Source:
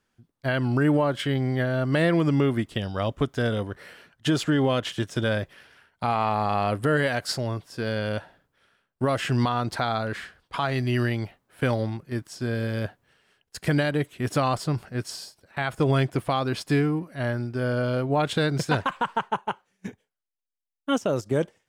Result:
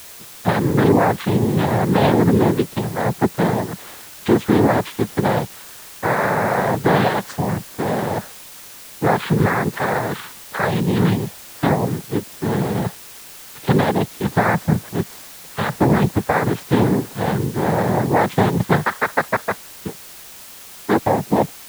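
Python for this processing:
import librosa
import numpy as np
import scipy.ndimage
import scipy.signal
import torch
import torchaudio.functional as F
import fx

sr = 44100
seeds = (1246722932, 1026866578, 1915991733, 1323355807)

p1 = scipy.signal.sosfilt(scipy.signal.butter(2, 1700.0, 'lowpass', fs=sr, output='sos'), x)
p2 = fx.noise_vocoder(p1, sr, seeds[0], bands=6)
p3 = fx.quant_dither(p2, sr, seeds[1], bits=6, dither='triangular')
p4 = p2 + (p3 * 10.0 ** (-7.5 / 20.0))
y = p4 * 10.0 ** (4.5 / 20.0)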